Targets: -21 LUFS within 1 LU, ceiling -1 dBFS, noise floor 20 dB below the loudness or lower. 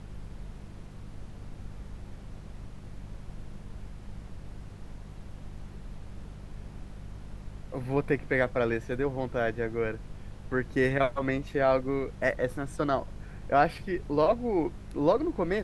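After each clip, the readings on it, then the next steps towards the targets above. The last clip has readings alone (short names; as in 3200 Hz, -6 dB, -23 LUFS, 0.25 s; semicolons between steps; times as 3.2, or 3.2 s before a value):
hum 50 Hz; harmonics up to 200 Hz; hum level -44 dBFS; noise floor -46 dBFS; noise floor target -49 dBFS; loudness -29.0 LUFS; peak -11.0 dBFS; loudness target -21.0 LUFS
-> de-hum 50 Hz, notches 4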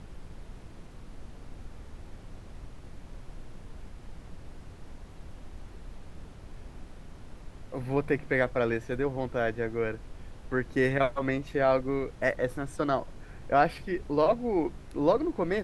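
hum none; noise floor -48 dBFS; noise floor target -49 dBFS
-> noise print and reduce 6 dB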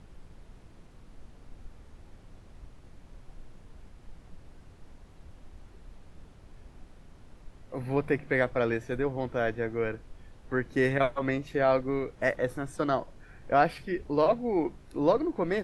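noise floor -54 dBFS; loudness -29.0 LUFS; peak -11.0 dBFS; loudness target -21.0 LUFS
-> gain +8 dB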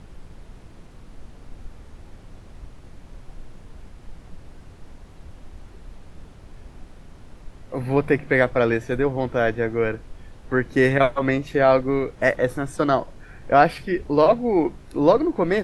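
loudness -21.0 LUFS; peak -3.0 dBFS; noise floor -46 dBFS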